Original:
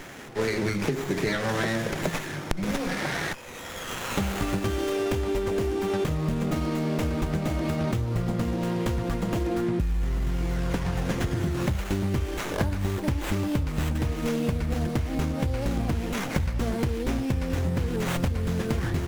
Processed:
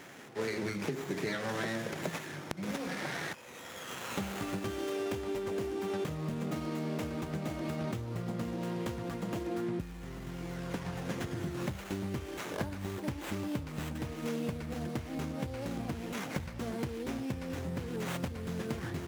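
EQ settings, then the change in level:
high-pass filter 120 Hz 12 dB per octave
−8.0 dB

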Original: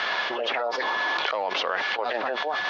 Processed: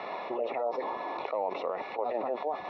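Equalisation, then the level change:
moving average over 28 samples
low-shelf EQ 150 Hz −4 dB
0.0 dB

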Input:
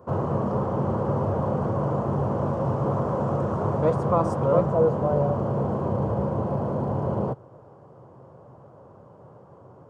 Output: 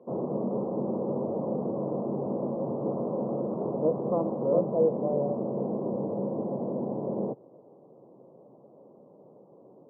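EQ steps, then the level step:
Gaussian smoothing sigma 12 samples
high-pass filter 210 Hz 24 dB per octave
high-frequency loss of the air 490 metres
+1.5 dB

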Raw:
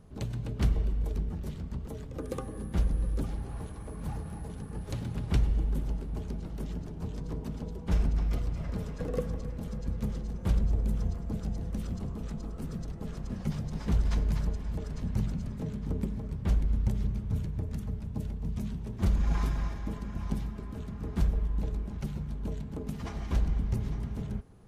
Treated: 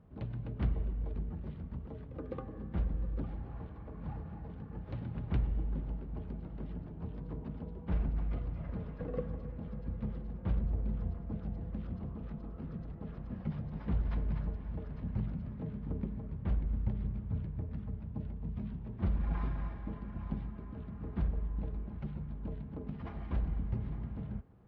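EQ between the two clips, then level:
Gaussian smoothing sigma 3 samples
high-pass filter 42 Hz
notch filter 410 Hz, Q 13
−4.5 dB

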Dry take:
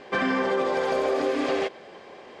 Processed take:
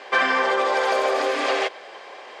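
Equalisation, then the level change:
high-pass filter 660 Hz 12 dB per octave
+8.0 dB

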